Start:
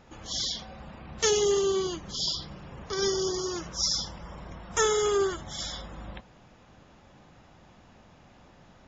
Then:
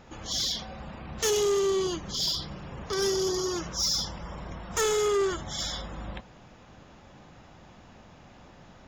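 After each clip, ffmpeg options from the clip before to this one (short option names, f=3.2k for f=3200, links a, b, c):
-af "asoftclip=type=tanh:threshold=-25dB,volume=3.5dB"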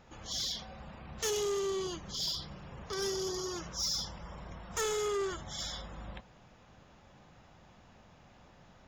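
-af "equalizer=f=300:t=o:w=0.78:g=-3.5,volume=-6.5dB"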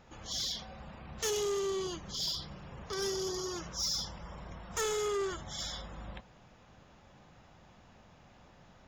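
-af anull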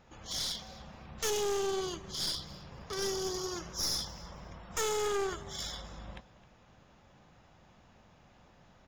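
-af "aecho=1:1:263|526:0.126|0.0277,aeval=exprs='0.0473*(cos(1*acos(clip(val(0)/0.0473,-1,1)))-cos(1*PI/2))+0.0133*(cos(4*acos(clip(val(0)/0.0473,-1,1)))-cos(4*PI/2))+0.0075*(cos(6*acos(clip(val(0)/0.0473,-1,1)))-cos(6*PI/2))+0.0015*(cos(7*acos(clip(val(0)/0.0473,-1,1)))-cos(7*PI/2))':c=same"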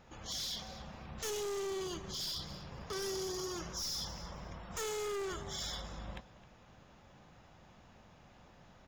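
-af "alimiter=level_in=5dB:limit=-24dB:level=0:latency=1:release=18,volume=-5dB,asoftclip=type=hard:threshold=-35.5dB,volume=1dB"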